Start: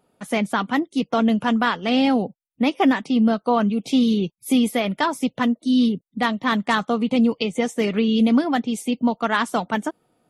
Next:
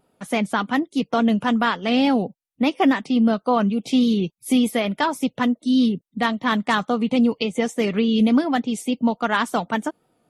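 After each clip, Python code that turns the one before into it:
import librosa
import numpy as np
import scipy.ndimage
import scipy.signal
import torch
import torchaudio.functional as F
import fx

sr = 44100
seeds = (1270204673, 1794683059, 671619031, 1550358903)

y = fx.vibrato(x, sr, rate_hz=3.5, depth_cents=49.0)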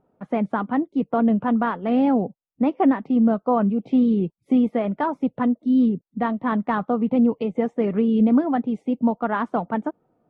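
y = scipy.signal.sosfilt(scipy.signal.butter(2, 1100.0, 'lowpass', fs=sr, output='sos'), x)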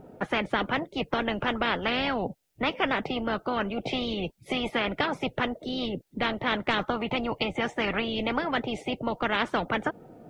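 y = fx.peak_eq(x, sr, hz=1100.0, db=-10.0, octaves=0.49)
y = fx.spectral_comp(y, sr, ratio=4.0)
y = F.gain(torch.from_numpy(y), -2.0).numpy()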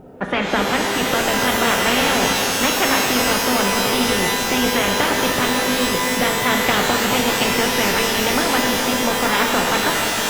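y = fx.rev_shimmer(x, sr, seeds[0], rt60_s=3.9, semitones=12, shimmer_db=-2, drr_db=0.0)
y = F.gain(torch.from_numpy(y), 5.5).numpy()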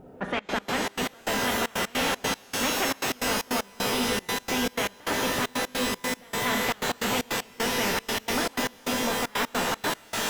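y = 10.0 ** (-11.5 / 20.0) * np.tanh(x / 10.0 ** (-11.5 / 20.0))
y = fx.step_gate(y, sr, bpm=154, pattern='xxxx.x.xx.x..', floor_db=-24.0, edge_ms=4.5)
y = F.gain(torch.from_numpy(y), -6.5).numpy()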